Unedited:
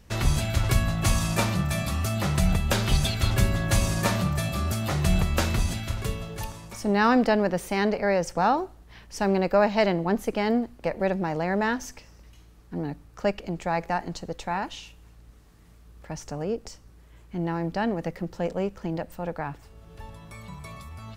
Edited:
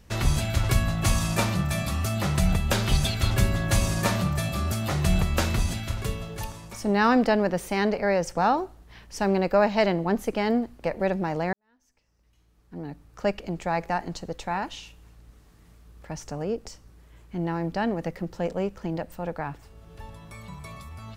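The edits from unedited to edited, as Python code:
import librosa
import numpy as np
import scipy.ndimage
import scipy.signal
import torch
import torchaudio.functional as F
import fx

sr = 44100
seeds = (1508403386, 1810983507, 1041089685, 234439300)

y = fx.edit(x, sr, fx.fade_in_span(start_s=11.53, length_s=1.77, curve='qua'), tone=tone)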